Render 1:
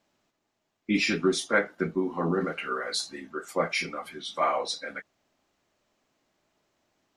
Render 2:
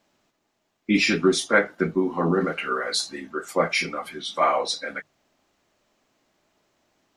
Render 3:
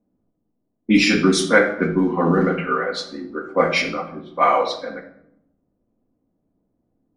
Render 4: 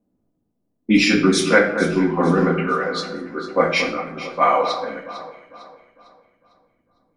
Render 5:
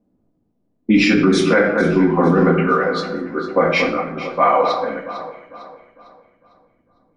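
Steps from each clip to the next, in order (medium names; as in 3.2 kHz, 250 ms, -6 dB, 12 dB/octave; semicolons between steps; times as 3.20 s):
hum notches 50/100/150 Hz; trim +5 dB
level-controlled noise filter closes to 320 Hz, open at -16.5 dBFS; simulated room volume 2000 m³, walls furnished, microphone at 1.9 m; trim +3 dB
echo whose repeats swap between lows and highs 226 ms, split 1.8 kHz, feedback 62%, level -9.5 dB
low-pass 2 kHz 6 dB/octave; peak limiter -10.5 dBFS, peak gain reduction 7.5 dB; trim +5.5 dB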